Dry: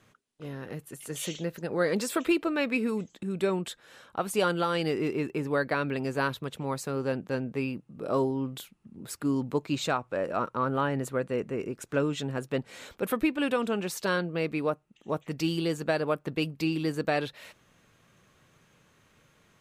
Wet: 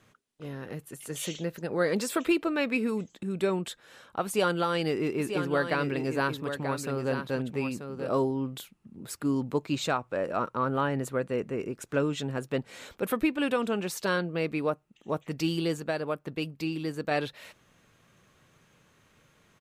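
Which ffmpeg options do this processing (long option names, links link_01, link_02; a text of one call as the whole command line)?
ffmpeg -i in.wav -filter_complex "[0:a]asplit=3[link_01][link_02][link_03];[link_01]afade=type=out:start_time=5.18:duration=0.02[link_04];[link_02]aecho=1:1:935:0.398,afade=type=in:start_time=5.18:duration=0.02,afade=type=out:start_time=8.08:duration=0.02[link_05];[link_03]afade=type=in:start_time=8.08:duration=0.02[link_06];[link_04][link_05][link_06]amix=inputs=3:normalize=0,asplit=3[link_07][link_08][link_09];[link_07]atrim=end=15.802[link_10];[link_08]atrim=start=15.798:end=17.112,asetpts=PTS-STARTPTS,volume=-3.5dB[link_11];[link_09]atrim=start=17.108[link_12];[link_10][link_11]acrossfade=duration=0.004:curve1=hsin:curve2=hsin[link_13];[link_13][link_12]acrossfade=duration=0.004:curve1=hsin:curve2=hsin" out.wav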